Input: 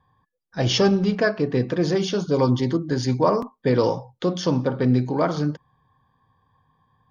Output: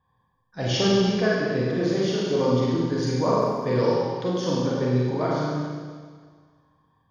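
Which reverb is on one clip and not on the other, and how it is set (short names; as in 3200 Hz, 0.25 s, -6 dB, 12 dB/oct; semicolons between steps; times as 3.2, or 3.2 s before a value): Schroeder reverb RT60 1.7 s, combs from 33 ms, DRR -5 dB; gain -7.5 dB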